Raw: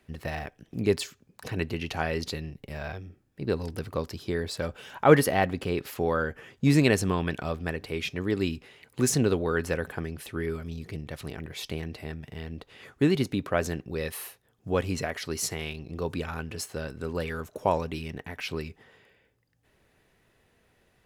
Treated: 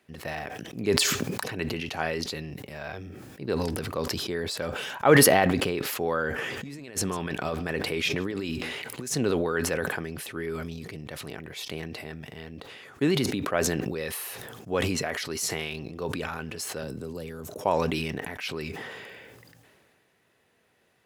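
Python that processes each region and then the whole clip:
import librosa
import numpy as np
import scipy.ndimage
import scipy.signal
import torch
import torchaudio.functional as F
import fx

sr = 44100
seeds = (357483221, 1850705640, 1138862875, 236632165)

y = fx.chain(x, sr, fx.over_compress(threshold_db=-30.0, ratio=-0.5),
    fx.echo_single(ms=150, db=-22.0), at=(6.38, 9.13))
y = fx.chain(y, sr, fx.peak_eq(hz=1700.0, db=-14.0, octaves=2.7),
    fx.band_squash(depth_pct=100), at=(16.82, 17.61))
y = scipy.signal.sosfilt(scipy.signal.butter(2, 98.0, 'highpass', fs=sr, output='sos'), y)
y = fx.low_shelf(y, sr, hz=230.0, db=-6.0)
y = fx.sustainer(y, sr, db_per_s=24.0)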